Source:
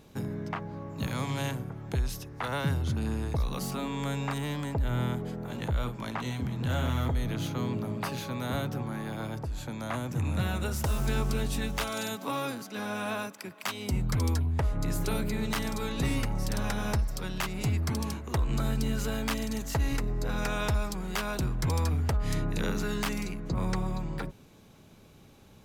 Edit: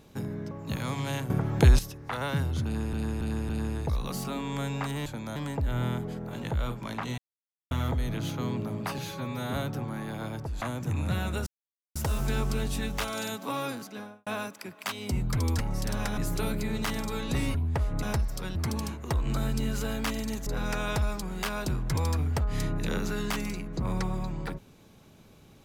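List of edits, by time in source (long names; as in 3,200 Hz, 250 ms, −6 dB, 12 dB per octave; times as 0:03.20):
0:00.51–0:00.82: remove
0:01.61–0:02.10: clip gain +11.5 dB
0:02.96–0:03.24: repeat, 4 plays
0:06.35–0:06.88: silence
0:08.15–0:08.52: time-stretch 1.5×
0:09.60–0:09.90: move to 0:04.53
0:10.75: splice in silence 0.49 s
0:12.61–0:13.06: fade out and dull
0:14.38–0:14.86: swap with 0:16.23–0:16.82
0:17.35–0:17.79: remove
0:19.70–0:20.19: remove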